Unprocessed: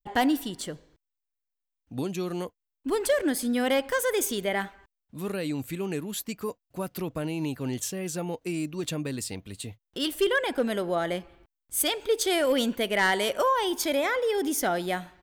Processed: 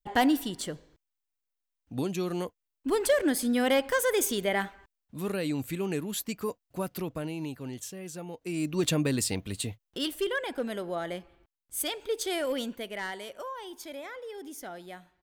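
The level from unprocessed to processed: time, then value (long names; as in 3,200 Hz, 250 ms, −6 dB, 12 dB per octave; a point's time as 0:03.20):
0:06.82 0 dB
0:07.75 −8 dB
0:08.34 −8 dB
0:08.77 +5 dB
0:09.59 +5 dB
0:10.24 −6 dB
0:12.45 −6 dB
0:13.28 −15 dB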